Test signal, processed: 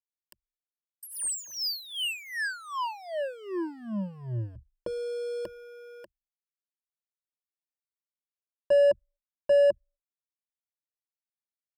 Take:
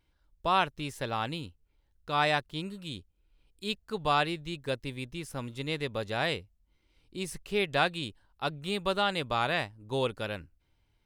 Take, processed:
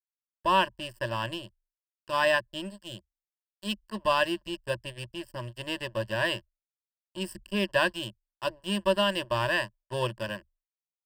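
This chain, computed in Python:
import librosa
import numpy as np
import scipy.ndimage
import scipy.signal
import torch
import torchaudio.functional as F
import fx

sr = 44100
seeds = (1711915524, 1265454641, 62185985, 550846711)

y = np.sign(x) * np.maximum(np.abs(x) - 10.0 ** (-41.0 / 20.0), 0.0)
y = fx.ripple_eq(y, sr, per_octave=1.3, db=18)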